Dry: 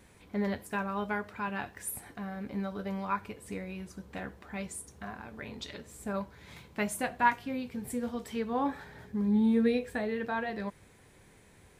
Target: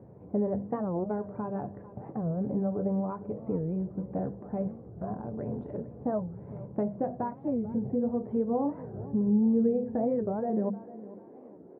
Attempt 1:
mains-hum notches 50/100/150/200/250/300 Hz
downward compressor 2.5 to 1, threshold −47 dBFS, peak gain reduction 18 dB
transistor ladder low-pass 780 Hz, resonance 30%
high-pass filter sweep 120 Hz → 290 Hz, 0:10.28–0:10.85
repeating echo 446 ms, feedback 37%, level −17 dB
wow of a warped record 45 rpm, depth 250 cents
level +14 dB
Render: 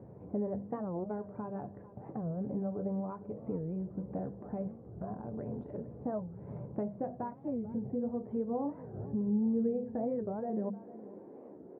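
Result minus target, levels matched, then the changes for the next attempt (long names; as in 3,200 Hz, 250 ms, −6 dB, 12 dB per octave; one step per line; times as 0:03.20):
downward compressor: peak gain reduction +6 dB
change: downward compressor 2.5 to 1, threshold −37 dBFS, peak gain reduction 12 dB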